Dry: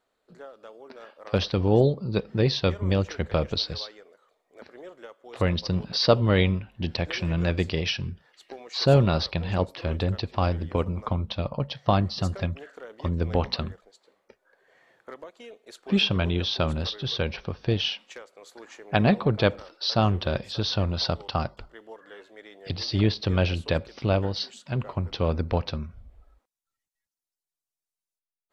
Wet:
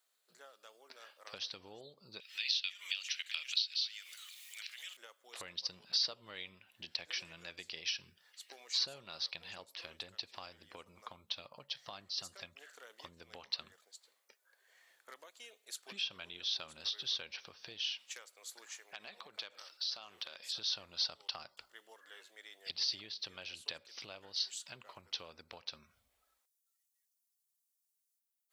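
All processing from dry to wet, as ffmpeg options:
-filter_complex "[0:a]asettb=1/sr,asplit=3[s0][s1][s2];[s0]atrim=end=2.204[s3];[s1]atrim=start=2.2:end=4.97,asetpts=PTS-STARTPTS,afade=t=in:d=0.004:c=qsin,afade=t=out:st=2.766:d=0.004:c=qsin,highpass=f=2700:t=q:w=2.8,acompressor=mode=upward:threshold=0.0224:ratio=2.5:attack=3.2:release=140:knee=2.83:detection=peak[s4];[s2]atrim=start=4.966[s5];[s3][s4]acrossfade=d=0.004:c1=hsin:c2=qsin[s6];[s6][s5]acrossfade=d=0.004:c1=qsin:c2=hsin,asettb=1/sr,asplit=3[s7][s8][s9];[s7]atrim=end=18.714[s10];[s8]atrim=start=18.71:end=20.58,asetpts=PTS-STARTPTS,afade=t=in:d=0.004:c=qsin,afade=t=out:st=1.866:d=0.004:c=qsin,highpass=f=570:p=1,acompressor=threshold=0.0158:ratio=6:attack=3.2:release=140:knee=1:detection=peak[s11];[s9]atrim=start=20.576[s12];[s10][s11]acrossfade=d=0.004:c1=hsin:c2=qsin[s13];[s13][s12]acrossfade=d=0.004:c1=qsin:c2=hsin,acompressor=threshold=0.0251:ratio=6,aderivative,volume=2"

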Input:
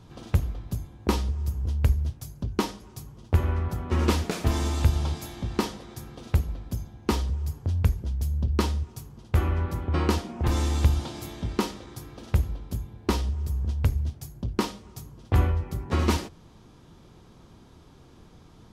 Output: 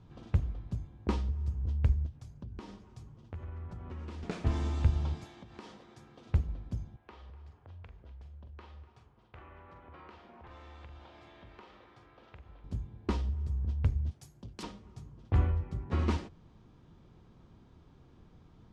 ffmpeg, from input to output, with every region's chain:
-filter_complex "[0:a]asettb=1/sr,asplit=3[s0][s1][s2];[s0]atrim=end=2.064[s3];[s1]atrim=start=2.06:end=4.23,asetpts=PTS-STARTPTS,afade=t=in:d=0.004:c=qsin,afade=t=out:st=2.166:d=0.004:c=qsin,bandreject=f=50:t=h:w=6,bandreject=f=100:t=h:w=6,bandreject=f=150:t=h:w=6,bandreject=f=200:t=h:w=6,bandreject=f=250:t=h:w=6,bandreject=f=300:t=h:w=6,bandreject=f=350:t=h:w=6,bandreject=f=400:t=h:w=6,bandreject=f=450:t=h:w=6,acompressor=threshold=0.02:ratio=5:attack=3.2:release=140:knee=1:detection=peak[s4];[s2]atrim=start=4.226[s5];[s3][s4]acrossfade=d=0.004:c1=hsin:c2=qsin[s6];[s6][s5]acrossfade=d=0.004:c1=qsin:c2=hsin,asettb=1/sr,asplit=3[s7][s8][s9];[s7]atrim=end=5.244[s10];[s8]atrim=start=5.24:end=6.28,asetpts=PTS-STARTPTS,afade=t=in:d=0.004:c=qsin,afade=t=out:st=1.036:d=0.004:c=qsin,acompressor=threshold=0.0282:ratio=6:attack=3.2:release=140:knee=1:detection=peak,highpass=f=380:p=1[s11];[s9]atrim=start=6.276[s12];[s10][s11]acrossfade=d=0.004:c1=hsin:c2=qsin[s13];[s13][s12]acrossfade=d=0.004:c1=qsin:c2=hsin,asettb=1/sr,asplit=3[s14][s15][s16];[s14]atrim=end=6.964[s17];[s15]atrim=start=6.96:end=12.64,asetpts=PTS-STARTPTS,afade=t=in:d=0.004:c=qsin,afade=t=out:st=5.676:d=0.004:c=qsin,acrossover=split=460 3900:gain=0.158 1 0.126[s18][s19][s20];[s18][s19][s20]amix=inputs=3:normalize=0,acompressor=threshold=0.00794:ratio=4:attack=3.2:release=140:knee=1:detection=peak,aecho=1:1:44|247:0.376|0.15,atrim=end_sample=250488[s21];[s16]atrim=start=12.636[s22];[s17][s21]acrossfade=d=0.004:c1=hsin:c2=qsin[s23];[s23][s22]acrossfade=d=0.004:c1=qsin:c2=hsin,asettb=1/sr,asplit=3[s24][s25][s26];[s24]atrim=end=14.114[s27];[s25]atrim=start=14.11:end=14.63,asetpts=PTS-STARTPTS,afade=t=in:d=0.004:c=qsin,afade=t=out:st=0.516:d=0.004:c=qsin,aemphasis=mode=production:type=bsi,acrossover=split=150|3000[s28][s29][s30];[s29]acompressor=threshold=0.0126:ratio=6:attack=3.2:release=140:knee=2.83:detection=peak[s31];[s28][s31][s30]amix=inputs=3:normalize=0[s32];[s26]atrim=start=14.626[s33];[s27][s32]acrossfade=d=0.004:c1=hsin:c2=qsin[s34];[s34][s33]acrossfade=d=0.004:c1=qsin:c2=hsin,lowpass=f=8600:w=0.5412,lowpass=f=8600:w=1.3066,bass=f=250:g=4,treble=f=4000:g=-9,volume=0.355"

